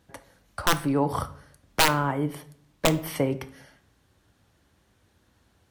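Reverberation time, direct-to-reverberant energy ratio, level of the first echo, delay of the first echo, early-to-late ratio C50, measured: 0.55 s, 10.5 dB, none, none, 16.0 dB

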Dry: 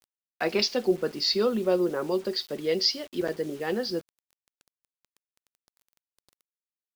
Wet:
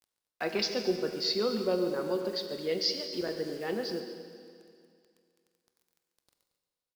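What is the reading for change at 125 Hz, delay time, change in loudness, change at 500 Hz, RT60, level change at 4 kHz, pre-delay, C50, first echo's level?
-4.5 dB, 0.141 s, -4.5 dB, -4.5 dB, 2.3 s, -4.5 dB, 23 ms, 6.0 dB, -13.0 dB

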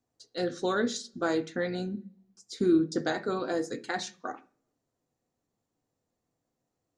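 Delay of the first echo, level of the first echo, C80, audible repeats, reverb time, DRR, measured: none, none, 24.5 dB, none, 0.45 s, 9.5 dB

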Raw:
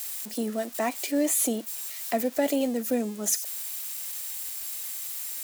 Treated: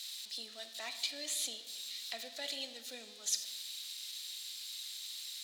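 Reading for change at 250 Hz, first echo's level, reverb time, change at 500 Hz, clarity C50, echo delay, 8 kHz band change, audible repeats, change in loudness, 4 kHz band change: -29.5 dB, none, 1.3 s, -22.5 dB, 10.0 dB, none, -10.5 dB, none, -11.5 dB, +2.5 dB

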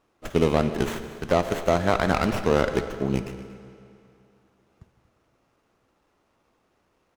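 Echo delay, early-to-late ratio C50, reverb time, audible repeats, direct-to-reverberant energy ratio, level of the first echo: 0.157 s, 10.0 dB, 2.6 s, 2, 9.0 dB, -18.0 dB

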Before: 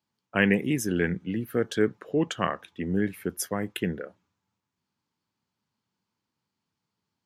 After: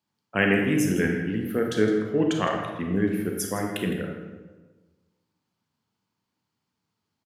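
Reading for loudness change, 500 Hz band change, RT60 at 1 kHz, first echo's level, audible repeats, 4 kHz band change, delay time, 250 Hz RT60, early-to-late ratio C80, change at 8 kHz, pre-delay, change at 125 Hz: +2.5 dB, +3.0 dB, 1.2 s, -13.0 dB, 1, +2.0 dB, 0.161 s, 1.5 s, 5.0 dB, +1.5 dB, 28 ms, +2.5 dB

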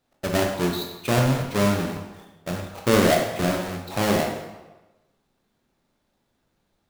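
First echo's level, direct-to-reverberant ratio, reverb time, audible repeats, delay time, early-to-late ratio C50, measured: none, 1.5 dB, 1.1 s, none, none, 4.5 dB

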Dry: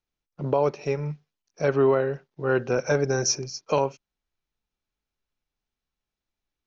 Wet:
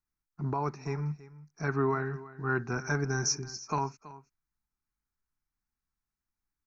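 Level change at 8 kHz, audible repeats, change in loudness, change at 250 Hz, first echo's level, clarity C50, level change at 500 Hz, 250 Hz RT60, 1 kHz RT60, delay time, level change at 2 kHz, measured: n/a, 1, -7.0 dB, -5.0 dB, -17.5 dB, none, -12.5 dB, none, none, 0.327 s, -2.5 dB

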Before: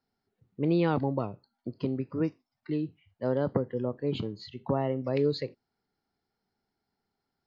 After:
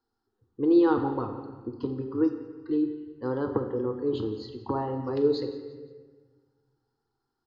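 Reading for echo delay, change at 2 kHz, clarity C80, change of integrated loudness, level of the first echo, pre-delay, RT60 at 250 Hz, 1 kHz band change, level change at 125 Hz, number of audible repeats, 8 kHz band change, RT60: 0.173 s, -1.0 dB, 8.5 dB, +3.0 dB, -16.5 dB, 6 ms, 1.9 s, +3.5 dB, -5.0 dB, 3, n/a, 1.5 s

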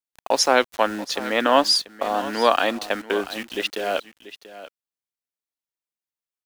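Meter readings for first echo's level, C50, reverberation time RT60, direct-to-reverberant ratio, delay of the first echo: -15.5 dB, none, none, none, 0.686 s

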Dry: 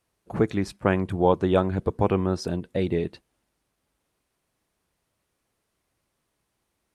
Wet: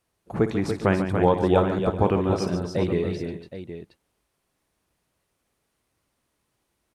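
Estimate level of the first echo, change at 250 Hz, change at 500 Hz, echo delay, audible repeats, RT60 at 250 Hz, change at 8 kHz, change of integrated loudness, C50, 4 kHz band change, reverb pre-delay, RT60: -13.0 dB, +1.5 dB, +2.0 dB, 57 ms, 5, none, +1.5 dB, +1.5 dB, none, +1.5 dB, none, none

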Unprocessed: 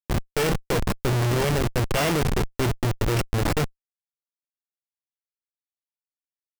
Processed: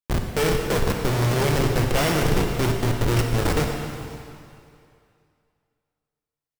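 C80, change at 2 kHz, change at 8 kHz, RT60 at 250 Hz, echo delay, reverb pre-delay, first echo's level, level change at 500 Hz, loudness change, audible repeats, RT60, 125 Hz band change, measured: 4.5 dB, +2.0 dB, +2.0 dB, 2.2 s, 0.535 s, 22 ms, -22.0 dB, +2.5 dB, +2.0 dB, 1, 2.5 s, +2.0 dB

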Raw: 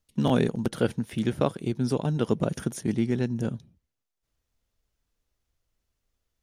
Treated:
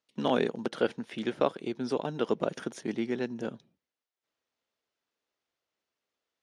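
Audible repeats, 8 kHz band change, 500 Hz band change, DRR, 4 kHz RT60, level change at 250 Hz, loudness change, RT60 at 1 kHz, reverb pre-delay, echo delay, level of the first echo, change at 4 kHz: none, -9.0 dB, -1.5 dB, none, none, -6.5 dB, -4.5 dB, none, none, none, none, -1.0 dB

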